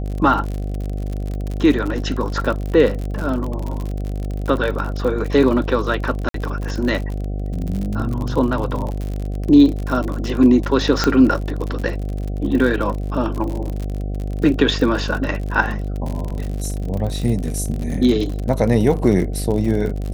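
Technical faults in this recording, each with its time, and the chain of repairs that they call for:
mains buzz 50 Hz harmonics 15 −24 dBFS
surface crackle 54 per second −24 dBFS
0:06.29–0:06.34: drop-out 53 ms
0:11.04: click −3 dBFS
0:16.30–0:16.31: drop-out 5.1 ms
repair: click removal
hum removal 50 Hz, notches 15
repair the gap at 0:06.29, 53 ms
repair the gap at 0:16.30, 5.1 ms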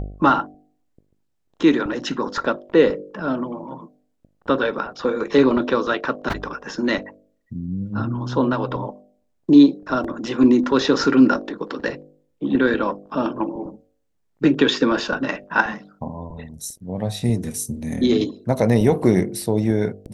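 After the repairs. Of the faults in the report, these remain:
none of them is left

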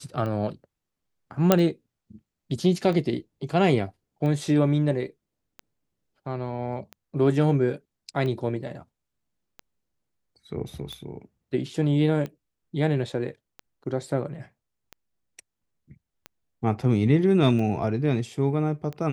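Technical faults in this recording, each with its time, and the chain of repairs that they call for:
scratch tick 45 rpm −22 dBFS
0:01.52: click −3 dBFS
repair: click removal

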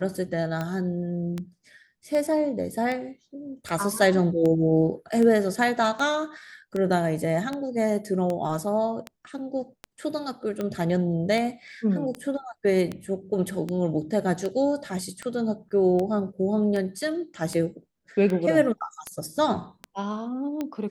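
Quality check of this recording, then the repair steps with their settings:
scratch tick 78 rpm −17 dBFS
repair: click removal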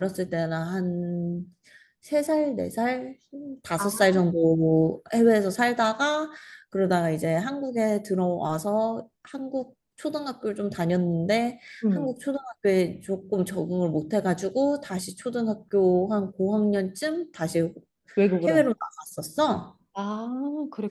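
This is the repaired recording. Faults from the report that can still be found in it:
none of them is left

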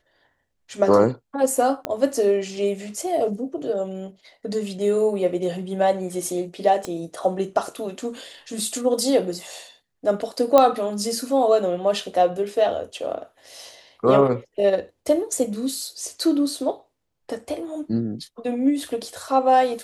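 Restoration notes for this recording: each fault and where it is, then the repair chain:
0:01.85: click −10 dBFS
0:06.85: click −15 dBFS
0:10.58: click −4 dBFS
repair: click removal

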